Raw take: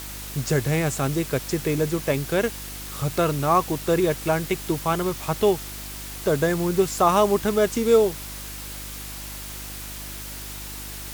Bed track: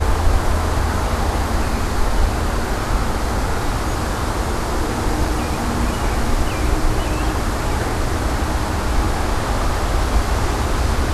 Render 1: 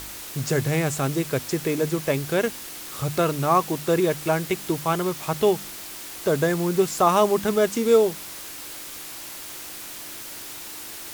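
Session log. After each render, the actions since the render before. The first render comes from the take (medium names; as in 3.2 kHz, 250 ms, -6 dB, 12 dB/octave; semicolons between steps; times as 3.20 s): de-hum 50 Hz, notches 5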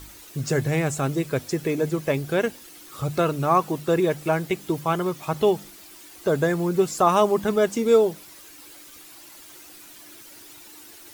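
noise reduction 11 dB, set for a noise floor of -38 dBFS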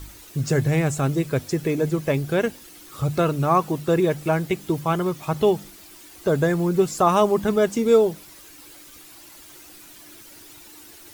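bass shelf 170 Hz +7 dB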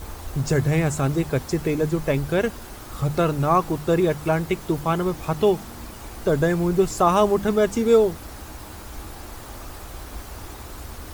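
add bed track -19 dB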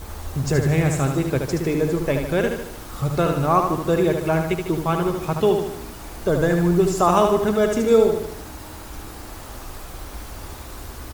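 feedback delay 75 ms, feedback 51%, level -5.5 dB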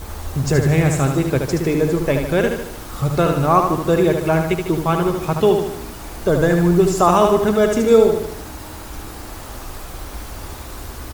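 trim +3.5 dB; peak limiter -2 dBFS, peak gain reduction 3 dB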